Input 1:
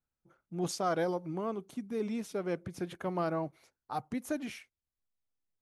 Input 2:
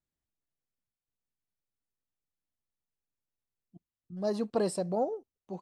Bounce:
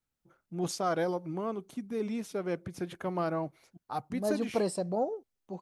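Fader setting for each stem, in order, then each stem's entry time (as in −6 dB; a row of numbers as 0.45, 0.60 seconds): +1.0, −0.5 decibels; 0.00, 0.00 seconds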